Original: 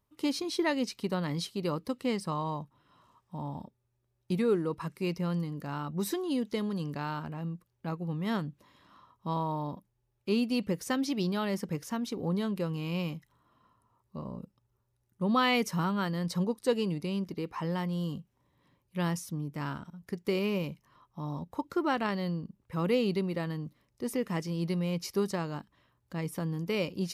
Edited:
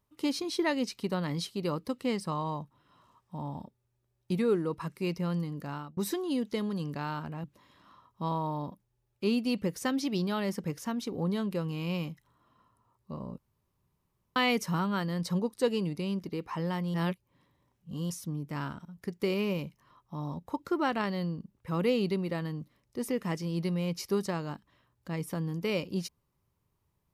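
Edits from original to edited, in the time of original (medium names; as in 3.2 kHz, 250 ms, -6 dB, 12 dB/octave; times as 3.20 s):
5.59–5.97 s: fade out equal-power
7.44–8.49 s: delete
14.43–15.41 s: room tone
17.99–19.15 s: reverse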